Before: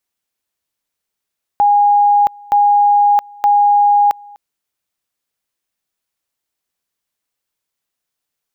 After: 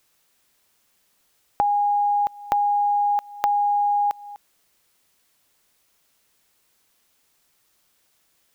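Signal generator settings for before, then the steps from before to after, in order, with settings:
two-level tone 820 Hz -7.5 dBFS, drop 26.5 dB, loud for 0.67 s, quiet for 0.25 s, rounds 3
compressor, threshold -20 dBFS; added noise white -66 dBFS

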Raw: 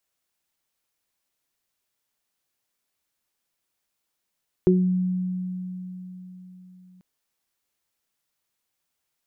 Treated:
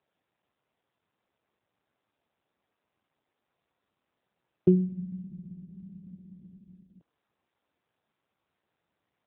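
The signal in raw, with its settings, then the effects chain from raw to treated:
additive tone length 2.34 s, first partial 183 Hz, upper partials 4.5 dB, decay 4.19 s, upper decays 0.32 s, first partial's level -16 dB
LPF 1000 Hz 12 dB/oct; AMR-NB 7.95 kbps 8000 Hz

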